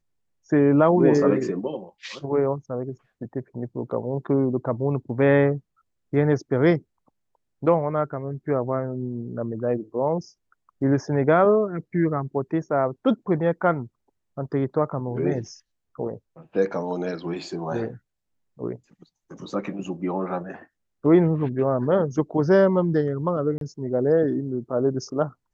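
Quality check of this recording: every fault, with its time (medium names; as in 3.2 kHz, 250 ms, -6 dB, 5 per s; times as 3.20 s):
23.58–23.61 s: dropout 32 ms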